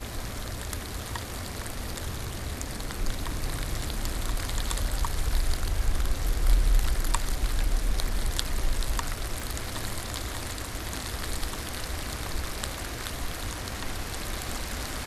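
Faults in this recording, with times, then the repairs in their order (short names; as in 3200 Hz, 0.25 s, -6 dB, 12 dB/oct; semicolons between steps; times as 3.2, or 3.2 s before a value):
9.4 pop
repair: de-click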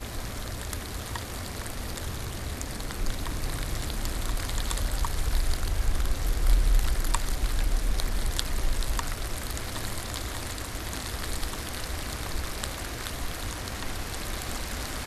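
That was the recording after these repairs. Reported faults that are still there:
9.4 pop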